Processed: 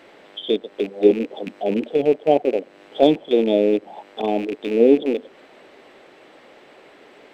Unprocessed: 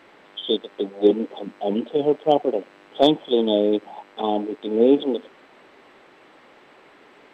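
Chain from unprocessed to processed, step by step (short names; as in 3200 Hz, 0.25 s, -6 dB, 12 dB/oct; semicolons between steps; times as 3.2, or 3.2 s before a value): rattling part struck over -34 dBFS, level -20 dBFS; resonant low shelf 790 Hz +6.5 dB, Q 1.5; mismatched tape noise reduction encoder only; gain -5.5 dB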